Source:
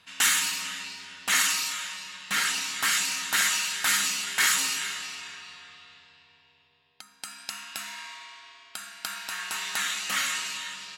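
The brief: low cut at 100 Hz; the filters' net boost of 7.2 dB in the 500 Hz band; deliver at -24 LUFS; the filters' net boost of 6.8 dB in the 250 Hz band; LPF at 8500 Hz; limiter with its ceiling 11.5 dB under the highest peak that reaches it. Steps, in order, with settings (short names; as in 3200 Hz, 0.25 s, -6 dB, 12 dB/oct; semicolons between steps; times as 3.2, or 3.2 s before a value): HPF 100 Hz; LPF 8500 Hz; bell 250 Hz +6.5 dB; bell 500 Hz +8 dB; gain +7 dB; limiter -14 dBFS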